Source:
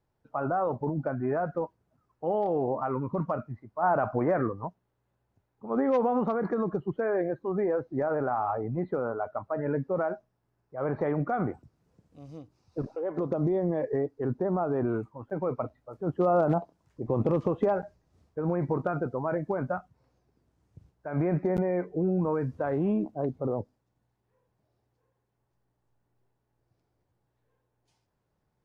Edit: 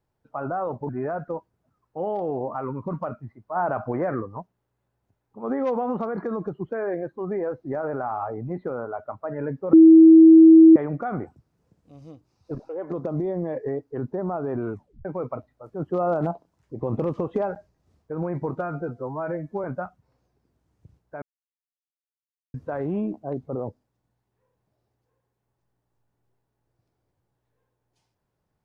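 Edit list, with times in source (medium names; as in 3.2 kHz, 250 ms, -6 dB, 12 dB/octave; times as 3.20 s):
0.89–1.16 s: delete
10.00–11.03 s: bleep 323 Hz -6.5 dBFS
15.00 s: tape stop 0.32 s
18.86–19.56 s: stretch 1.5×
21.14–22.46 s: mute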